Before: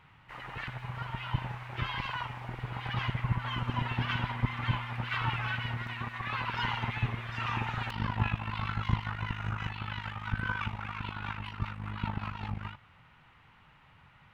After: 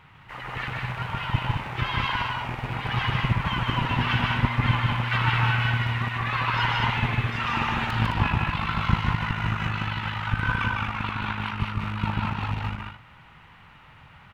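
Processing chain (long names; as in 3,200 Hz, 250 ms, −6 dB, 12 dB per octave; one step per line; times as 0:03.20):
loose part that buzzes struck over −36 dBFS, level −35 dBFS
loudspeakers that aren't time-aligned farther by 52 metres −3 dB, 73 metres −5 dB
level +6.5 dB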